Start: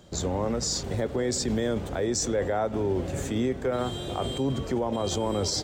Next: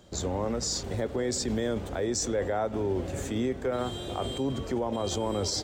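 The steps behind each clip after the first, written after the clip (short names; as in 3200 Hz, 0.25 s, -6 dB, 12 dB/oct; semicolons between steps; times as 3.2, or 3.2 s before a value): bell 150 Hz -5.5 dB 0.37 oct; gain -2 dB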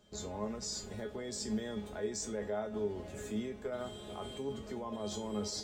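resonator 210 Hz, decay 0.25 s, harmonics all, mix 90%; gain +2 dB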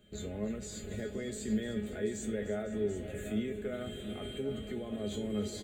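fixed phaser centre 2300 Hz, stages 4; on a send: tapped delay 0.302/0.505/0.736 s -15/-17/-11 dB; on the sum: gain +4.5 dB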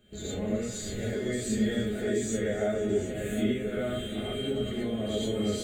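non-linear reverb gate 0.14 s rising, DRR -7.5 dB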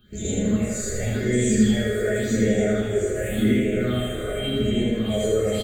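phaser stages 6, 0.89 Hz, lowest notch 210–1300 Hz; feedback echo 81 ms, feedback 56%, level -3 dB; gain +8 dB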